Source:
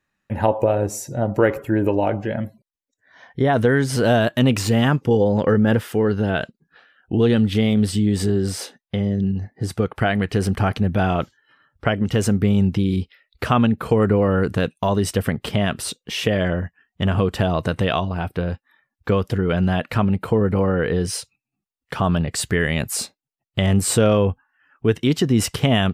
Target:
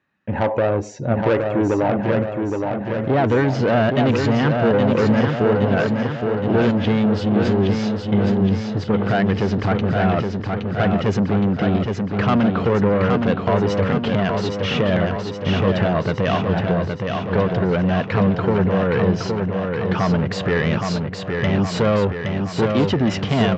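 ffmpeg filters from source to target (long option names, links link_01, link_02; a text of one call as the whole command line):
ffmpeg -i in.wav -af "lowshelf=frequency=440:gain=2.5,aresample=16000,asoftclip=type=tanh:threshold=-17.5dB,aresample=44100,atempo=1.1,highpass=110,lowpass=3300,aecho=1:1:818|1636|2454|3272|4090|4908|5726|6544:0.596|0.351|0.207|0.122|0.0722|0.0426|0.0251|0.0148,volume=4dB" out.wav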